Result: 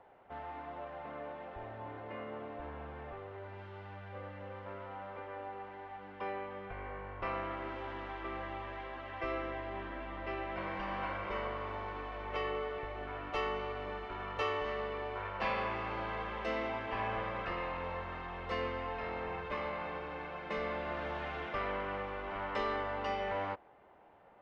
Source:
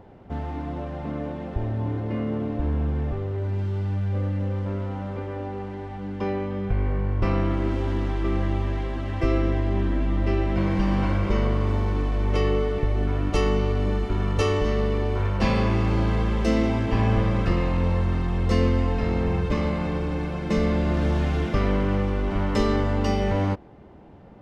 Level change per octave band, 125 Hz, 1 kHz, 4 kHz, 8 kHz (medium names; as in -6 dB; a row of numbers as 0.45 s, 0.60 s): -25.5 dB, -5.5 dB, -10.0 dB, no reading